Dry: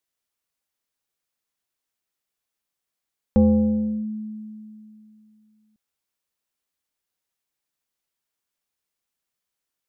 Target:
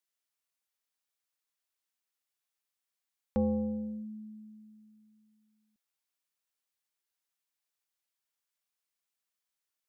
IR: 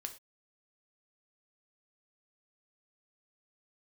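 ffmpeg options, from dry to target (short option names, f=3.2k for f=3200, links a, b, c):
-af "lowshelf=f=500:g=-10.5,volume=-4dB"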